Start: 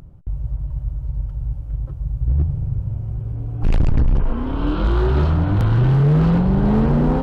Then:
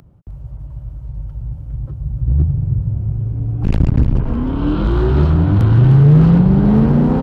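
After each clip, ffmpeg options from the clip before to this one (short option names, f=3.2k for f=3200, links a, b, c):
-filter_complex "[0:a]highpass=f=110:p=1,aecho=1:1:306|612|918|1224|1530:0.224|0.116|0.0605|0.0315|0.0164,acrossover=split=310|1500[a][b][c];[a]dynaudnorm=f=200:g=17:m=11.5dB[d];[d][b][c]amix=inputs=3:normalize=0"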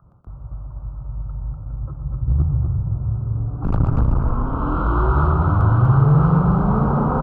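-filter_complex "[0:a]firequalizer=gain_entry='entry(360,0);entry(1300,14);entry(1800,-12)':delay=0.05:min_phase=1,asplit=2[a][b];[b]aecho=0:1:119.5|244.9:0.316|0.631[c];[a][c]amix=inputs=2:normalize=0,adynamicequalizer=threshold=0.0631:dfrequency=240:dqfactor=1.1:tfrequency=240:tqfactor=1.1:attack=5:release=100:ratio=0.375:range=3.5:mode=cutabove:tftype=bell,volume=-4.5dB"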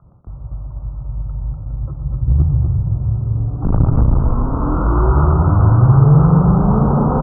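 -af "lowpass=1k,volume=4.5dB"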